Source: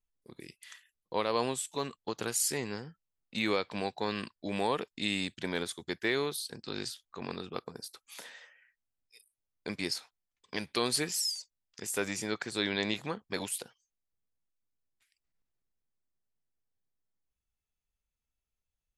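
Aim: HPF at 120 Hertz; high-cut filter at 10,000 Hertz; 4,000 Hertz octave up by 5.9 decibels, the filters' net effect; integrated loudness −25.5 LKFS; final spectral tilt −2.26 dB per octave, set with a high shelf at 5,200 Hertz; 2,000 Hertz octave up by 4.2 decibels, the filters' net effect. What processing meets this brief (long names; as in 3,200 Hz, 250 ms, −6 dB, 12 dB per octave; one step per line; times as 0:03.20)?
high-pass filter 120 Hz
low-pass filter 10,000 Hz
parametric band 2,000 Hz +3.5 dB
parametric band 4,000 Hz +8.5 dB
high-shelf EQ 5,200 Hz −5.5 dB
level +6 dB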